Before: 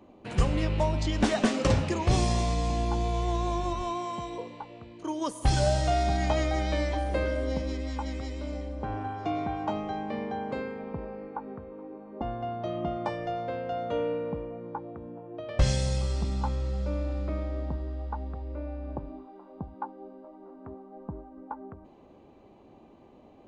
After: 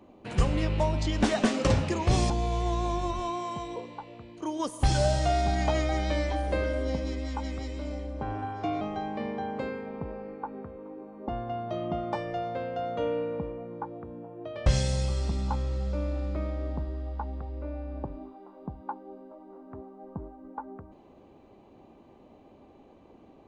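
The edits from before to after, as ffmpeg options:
-filter_complex "[0:a]asplit=3[a][b][c];[a]atrim=end=2.302[d];[b]atrim=start=2.918:end=9.432[e];[c]atrim=start=9.738[f];[d][e]acrossfade=d=0.004:c1=hsin:c2=hsin[g];[g][f]acrossfade=d=0.004:c1=hsin:c2=hsin"

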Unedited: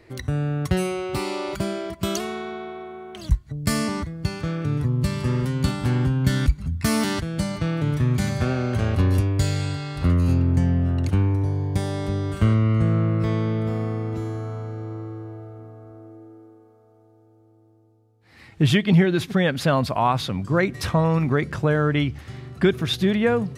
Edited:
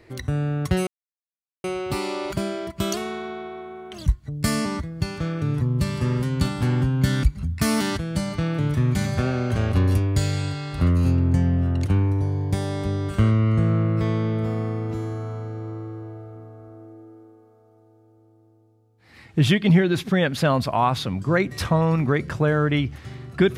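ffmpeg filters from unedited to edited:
-filter_complex "[0:a]asplit=2[a][b];[a]atrim=end=0.87,asetpts=PTS-STARTPTS,afade=t=out:st=0.866:d=0.004:c=hsin,apad=pad_dur=0.77[c];[b]atrim=start=0.87,asetpts=PTS-STARTPTS,afade=t=in:d=0.004:c=hsin[d];[c][d]concat=n=2:v=0:a=1"

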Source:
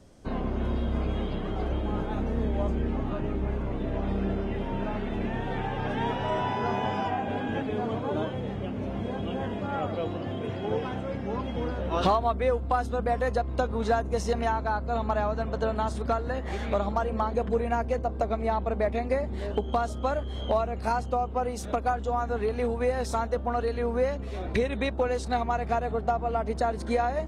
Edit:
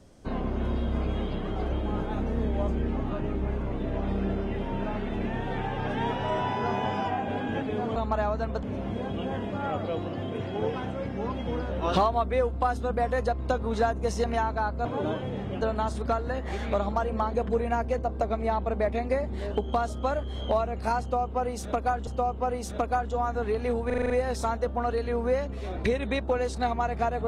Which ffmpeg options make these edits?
-filter_complex "[0:a]asplit=12[a][b][c][d][e][f][g][h][i][j][k][l];[a]atrim=end=7.962[m];[b]atrim=start=14.938:end=15.612[n];[c]atrim=start=8.718:end=14.942[o];[d]atrim=start=7.958:end=8.722[p];[e]atrim=start=15.608:end=22.072[q];[f]atrim=start=21.008:end=22.842[r];[g]atrim=start=22.798:end=22.842[s];[h]atrim=start=22.798:end=22.842[t];[i]atrim=start=22.798:end=22.842[u];[j]atrim=start=22.798:end=22.842[v];[k]atrim=start=22.798:end=22.842[w];[l]atrim=start=22.798[x];[m][n]acrossfade=d=0.004:c1=hsin:c2=hsin[y];[y][o]acrossfade=d=0.004:c1=hsin:c2=hsin[z];[z][p]acrossfade=d=0.004:c1=hsin:c2=hsin[aa];[aa][q]acrossfade=d=0.004:c1=hsin:c2=hsin[ab];[ab][r]acrossfade=d=0.004:c1=hsin:c2=hsin[ac];[ac][s]acrossfade=d=0.004:c1=hsin:c2=hsin[ad];[ad][t]acrossfade=d=0.004:c1=hsin:c2=hsin[ae];[ae][u]acrossfade=d=0.004:c1=hsin:c2=hsin[af];[af][v]acrossfade=d=0.004:c1=hsin:c2=hsin[ag];[ag][w]acrossfade=d=0.004:c1=hsin:c2=hsin[ah];[ah][x]acrossfade=d=0.004:c1=hsin:c2=hsin"

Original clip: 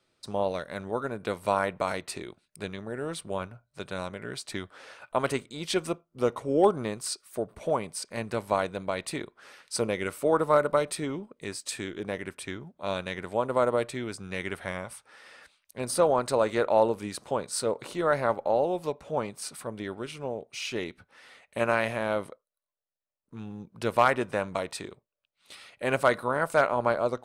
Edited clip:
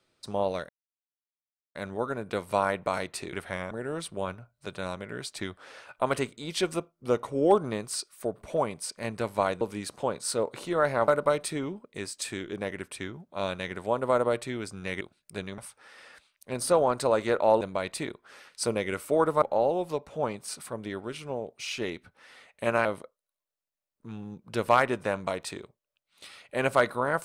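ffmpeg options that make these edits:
-filter_complex "[0:a]asplit=11[a][b][c][d][e][f][g][h][i][j][k];[a]atrim=end=0.69,asetpts=PTS-STARTPTS,afade=t=out:st=0.686:d=0.004:c=hsin,apad=pad_dur=1.06[l];[b]atrim=start=0.69:end=2.272,asetpts=PTS-STARTPTS,afade=t=in:d=0.004:c=hsin[m];[c]atrim=start=14.478:end=14.862[n];[d]atrim=start=2.838:end=8.742[o];[e]atrim=start=16.888:end=18.362[p];[f]atrim=start=10.548:end=14.482[q];[g]atrim=start=2.268:end=2.842[r];[h]atrim=start=14.858:end=16.892[s];[i]atrim=start=8.738:end=10.552[t];[j]atrim=start=18.358:end=21.792[u];[k]atrim=start=22.128[v];[l][m]concat=n=2:v=0:a=1[w];[w][n]acrossfade=d=0.004:c1=hsin:c2=hsin[x];[x][o]acrossfade=d=0.004:c1=hsin:c2=hsin[y];[y][p]acrossfade=d=0.004:c1=hsin:c2=hsin[z];[z][q]acrossfade=d=0.004:c1=hsin:c2=hsin[aa];[aa][r]acrossfade=d=0.004:c1=hsin:c2=hsin[ab];[ab][s]acrossfade=d=0.004:c1=hsin:c2=hsin[ac];[ac][t]acrossfade=d=0.004:c1=hsin:c2=hsin[ad];[ad][u]acrossfade=d=0.004:c1=hsin:c2=hsin[ae];[ae][v]acrossfade=d=0.004:c1=hsin:c2=hsin"

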